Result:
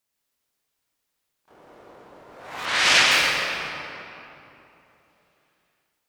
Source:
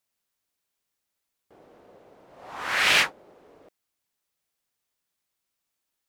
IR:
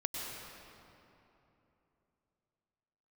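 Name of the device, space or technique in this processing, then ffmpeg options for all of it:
shimmer-style reverb: -filter_complex "[0:a]asplit=2[a][b];[b]asetrate=88200,aresample=44100,atempo=0.5,volume=-4dB[c];[a][c]amix=inputs=2:normalize=0[d];[1:a]atrim=start_sample=2205[e];[d][e]afir=irnorm=-1:irlink=0,asplit=3[f][g][h];[f]afade=t=out:st=2.65:d=0.02[i];[g]lowpass=7.7k,afade=t=in:st=2.65:d=0.02,afade=t=out:st=3.1:d=0.02[j];[h]afade=t=in:st=3.1:d=0.02[k];[i][j][k]amix=inputs=3:normalize=0,volume=1.5dB"

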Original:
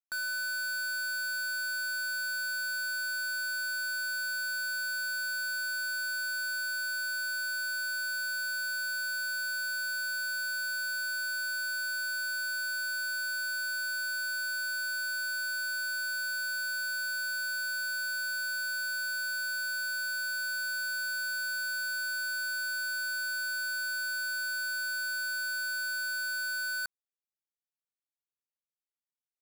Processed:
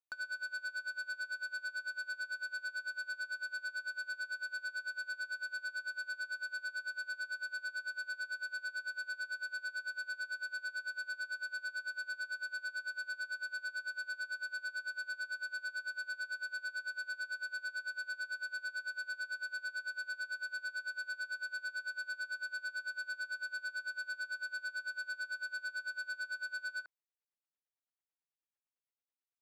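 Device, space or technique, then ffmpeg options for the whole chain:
helicopter radio: -af "highpass=340,lowpass=2.7k,aeval=exprs='val(0)*pow(10,-25*(0.5-0.5*cos(2*PI*9*n/s))/20)':c=same,asoftclip=type=hard:threshold=-39dB,volume=2.5dB"

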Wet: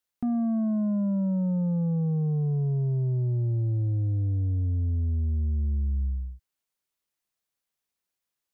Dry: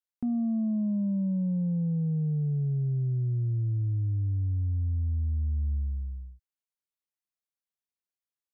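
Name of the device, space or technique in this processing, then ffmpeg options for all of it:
soft clipper into limiter: -af "asoftclip=type=tanh:threshold=-26.5dB,alimiter=level_in=7.5dB:limit=-24dB:level=0:latency=1,volume=-7.5dB,volume=8dB"

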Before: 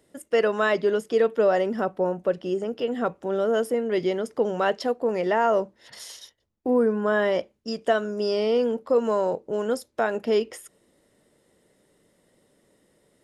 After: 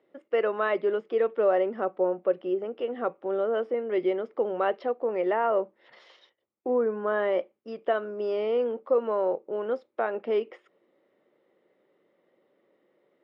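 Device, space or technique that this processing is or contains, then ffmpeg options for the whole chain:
kitchen radio: -af "highpass=210,equalizer=f=360:t=q:w=4:g=8,equalizer=f=540:t=q:w=4:g=7,equalizer=f=790:t=q:w=4:g=5,equalizer=f=1.2k:t=q:w=4:g=8,equalizer=f=2.2k:t=q:w=4:g=5,lowpass=f=3.4k:w=0.5412,lowpass=f=3.4k:w=1.3066,volume=-8.5dB"

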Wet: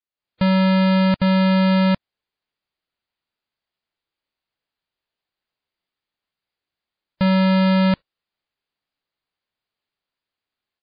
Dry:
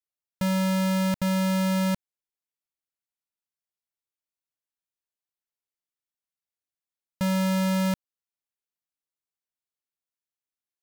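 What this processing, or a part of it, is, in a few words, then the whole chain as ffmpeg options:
low-bitrate web radio: -af "dynaudnorm=f=140:g=3:m=12.5dB,alimiter=limit=-15dB:level=0:latency=1" -ar 11025 -c:a libmp3lame -b:a 24k

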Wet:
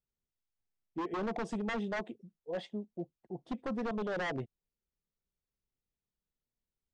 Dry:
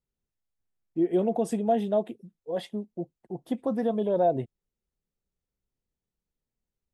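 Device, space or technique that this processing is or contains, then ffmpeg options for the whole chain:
synthesiser wavefolder: -af "aeval=exprs='0.0668*(abs(mod(val(0)/0.0668+3,4)-2)-1)':c=same,lowpass=f=6.8k:w=0.5412,lowpass=f=6.8k:w=1.3066,volume=-6dB"

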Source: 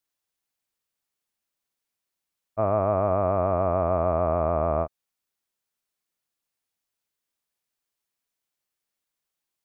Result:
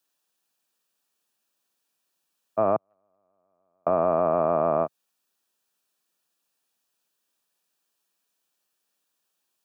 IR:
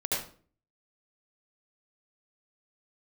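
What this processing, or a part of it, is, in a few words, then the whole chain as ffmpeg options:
PA system with an anti-feedback notch: -filter_complex "[0:a]asettb=1/sr,asplit=3[a][b][c];[a]atrim=end=2.764[d];[b]atrim=start=2.76:end=3.87,asetpts=PTS-STARTPTS,afade=t=in:d=0.004:c=qsin,afade=t=out:st=1.106:d=0.004:c=qsin,agate=range=-54dB:threshold=-15dB:ratio=16:detection=peak[e];[c]atrim=start=3.866[f];[d][e]acrossfade=d=0.004:c1=hsin:c2=qsin[g];[g][f]acrossfade=d=0.004:c1=qsin:c2=hsin,highpass=f=110:w=0.5412,highpass=f=110:w=1.3066,highpass=160,asuperstop=centerf=2100:order=4:qfactor=6.3,alimiter=limit=-18.5dB:level=0:latency=1:release=177,volume=7dB"

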